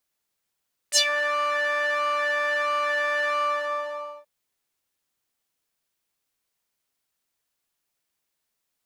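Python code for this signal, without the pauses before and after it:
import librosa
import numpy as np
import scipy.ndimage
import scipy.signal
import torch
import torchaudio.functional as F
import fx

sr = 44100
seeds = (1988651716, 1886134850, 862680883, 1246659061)

y = fx.sub_patch_pwm(sr, seeds[0], note=74, wave2='saw', interval_st=7, detune_cents=28, level2_db=-16.5, sub_db=-19.5, noise_db=-16, kind='bandpass', cutoff_hz=820.0, q=3.7, env_oct=3.5, env_decay_s=0.17, env_sustain_pct=25, attack_ms=42.0, decay_s=0.08, sustain_db=-13, release_s=0.89, note_s=2.44, lfo_hz=1.5, width_pct=45, width_swing_pct=14)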